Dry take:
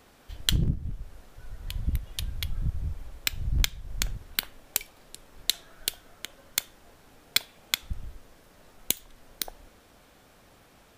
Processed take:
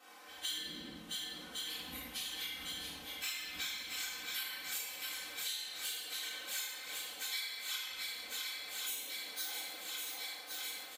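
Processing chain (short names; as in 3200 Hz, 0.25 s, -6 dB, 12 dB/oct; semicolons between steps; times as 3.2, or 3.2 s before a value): phase scrambler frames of 0.1 s; HPF 580 Hz 12 dB/oct; comb 3.9 ms, depth 92%; swung echo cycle 1.1 s, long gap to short 1.5:1, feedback 64%, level -10.5 dB; shoebox room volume 620 m³, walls mixed, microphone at 3.6 m; compressor 6:1, threshold -32 dBFS, peak gain reduction 17.5 dB; gain -6.5 dB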